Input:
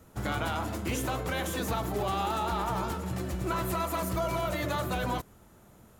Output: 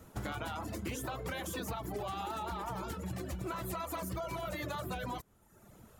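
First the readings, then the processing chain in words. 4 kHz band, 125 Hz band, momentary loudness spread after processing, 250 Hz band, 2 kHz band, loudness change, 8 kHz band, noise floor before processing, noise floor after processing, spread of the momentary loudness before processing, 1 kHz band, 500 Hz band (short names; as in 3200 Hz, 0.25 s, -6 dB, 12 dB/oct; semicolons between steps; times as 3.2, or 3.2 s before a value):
-7.5 dB, -8.0 dB, 2 LU, -7.5 dB, -7.5 dB, -8.0 dB, -6.5 dB, -57 dBFS, -63 dBFS, 4 LU, -8.0 dB, -8.0 dB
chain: reverb removal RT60 0.83 s; compressor, threshold -37 dBFS, peak gain reduction 9.5 dB; gain +1 dB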